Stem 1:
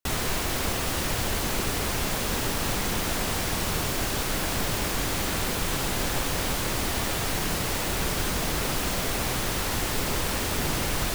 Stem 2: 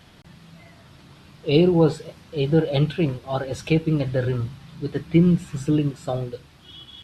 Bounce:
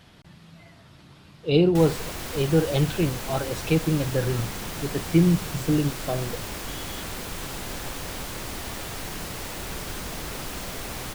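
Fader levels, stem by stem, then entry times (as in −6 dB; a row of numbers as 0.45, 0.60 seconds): −6.5, −2.0 decibels; 1.70, 0.00 seconds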